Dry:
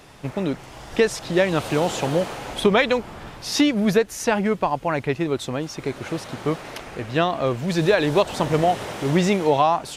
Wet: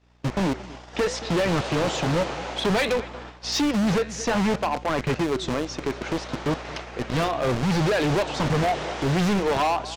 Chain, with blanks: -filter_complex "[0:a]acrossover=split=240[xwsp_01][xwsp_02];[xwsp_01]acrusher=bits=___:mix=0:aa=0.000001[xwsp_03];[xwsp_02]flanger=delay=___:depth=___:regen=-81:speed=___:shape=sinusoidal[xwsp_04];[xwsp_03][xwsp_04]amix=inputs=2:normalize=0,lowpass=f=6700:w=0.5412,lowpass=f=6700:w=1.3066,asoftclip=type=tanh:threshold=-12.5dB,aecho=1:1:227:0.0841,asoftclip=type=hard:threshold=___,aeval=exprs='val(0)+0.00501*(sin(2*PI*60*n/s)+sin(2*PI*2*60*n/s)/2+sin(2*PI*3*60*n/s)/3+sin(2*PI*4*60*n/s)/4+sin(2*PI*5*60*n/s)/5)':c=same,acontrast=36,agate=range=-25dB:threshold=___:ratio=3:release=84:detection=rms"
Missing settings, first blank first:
4, 6.1, 7.2, 0.62, -25dB, -34dB